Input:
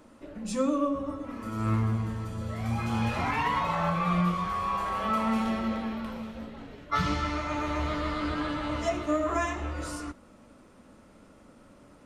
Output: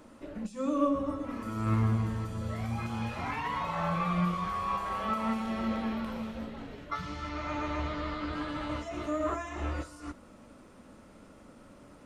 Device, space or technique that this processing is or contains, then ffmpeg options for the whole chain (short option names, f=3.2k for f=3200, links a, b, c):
de-esser from a sidechain: -filter_complex "[0:a]asettb=1/sr,asplit=3[a][b][c];[a]atrim=end=7.294[d];[b]atrim=start=7.29:end=8.33,asetpts=PTS-STARTPTS,afade=t=in:d=0.004:c=qsin,afade=t=out:st=1.036:d=0.004:c=qsin,lowpass=6.1k[e];[c]atrim=start=8.326[f];[d][e]acrossfade=d=0.004:c1=hsin:c2=qsin[g];[g][f]acrossfade=d=0.004:c1=qsin:c2=hsin,asplit=2[h][i];[i]highpass=f=4.5k:w=0.5412,highpass=f=4.5k:w=1.3066,apad=whole_len=531618[j];[h][j]sidechaincompress=threshold=-57dB:ratio=5:attack=3.6:release=72,volume=1dB"